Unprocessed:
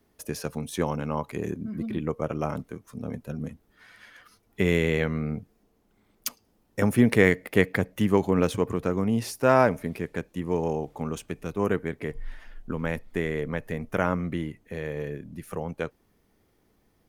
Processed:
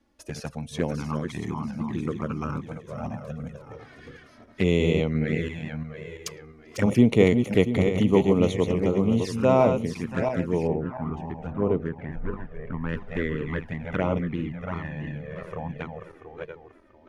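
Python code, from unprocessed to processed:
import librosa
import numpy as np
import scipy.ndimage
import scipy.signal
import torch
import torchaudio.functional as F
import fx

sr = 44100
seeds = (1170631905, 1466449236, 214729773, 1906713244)

y = fx.reverse_delay_fb(x, sr, ms=343, feedback_pct=57, wet_db=-6.0)
y = fx.lowpass(y, sr, hz=fx.steps((0.0, 7100.0), (10.67, 1600.0), (12.89, 3700.0)), slope=12)
y = fx.env_flanger(y, sr, rest_ms=3.6, full_db=-20.0)
y = y * librosa.db_to_amplitude(2.0)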